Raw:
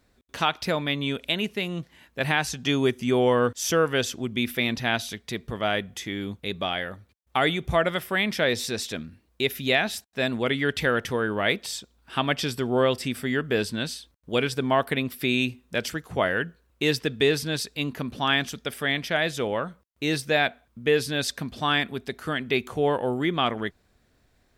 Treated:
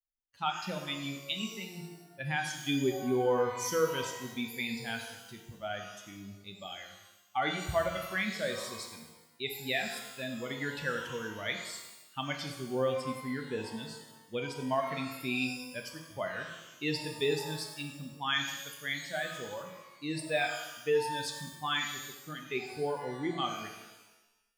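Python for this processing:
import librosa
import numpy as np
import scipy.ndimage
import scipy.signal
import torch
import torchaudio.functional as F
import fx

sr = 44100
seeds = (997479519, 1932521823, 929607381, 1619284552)

y = fx.bin_expand(x, sr, power=2.0)
y = fx.rev_shimmer(y, sr, seeds[0], rt60_s=1.0, semitones=12, shimmer_db=-8, drr_db=3.0)
y = y * librosa.db_to_amplitude(-5.5)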